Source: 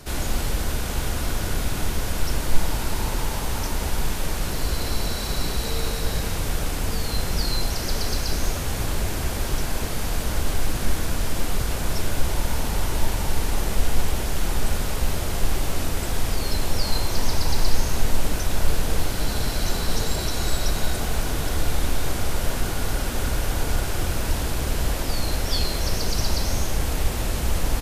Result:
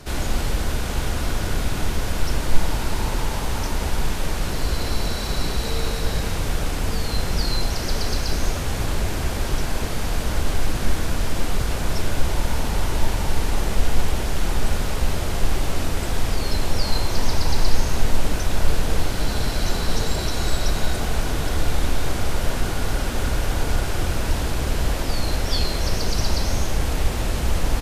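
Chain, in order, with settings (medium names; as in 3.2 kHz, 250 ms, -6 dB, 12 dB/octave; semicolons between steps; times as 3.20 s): treble shelf 9 kHz -8.5 dB; trim +2 dB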